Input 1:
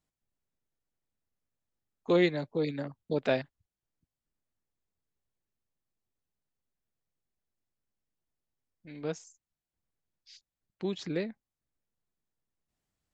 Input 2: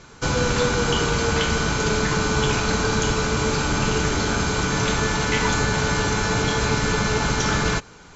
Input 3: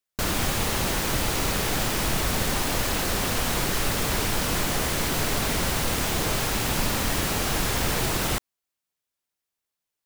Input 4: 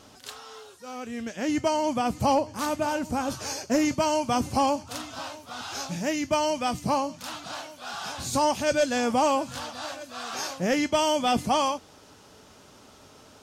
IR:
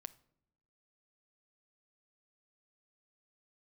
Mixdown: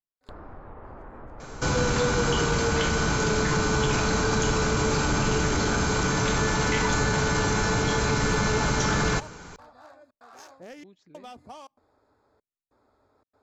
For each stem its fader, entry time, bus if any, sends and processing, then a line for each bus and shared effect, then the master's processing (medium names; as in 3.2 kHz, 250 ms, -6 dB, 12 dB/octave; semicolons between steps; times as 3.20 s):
-20.0 dB, 0.00 s, bus B, no send, none
+1.5 dB, 1.40 s, bus B, send -7 dB, none
-10.0 dB, 0.10 s, bus A, send -11 dB, low-pass 1.3 kHz 24 dB/octave
-11.5 dB, 0.00 s, bus A, send -21.5 dB, local Wiener filter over 15 samples; trance gate "..xxxxx.xxxxxx." 144 bpm -60 dB
bus A: 0.0 dB, peaking EQ 170 Hz -14 dB 0.77 oct; compression 12:1, threshold -41 dBFS, peak gain reduction 12.5 dB
bus B: 0.0 dB, peaking EQ 3.2 kHz -6 dB 0.96 oct; peak limiter -19.5 dBFS, peak gain reduction 11.5 dB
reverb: on, pre-delay 6 ms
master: none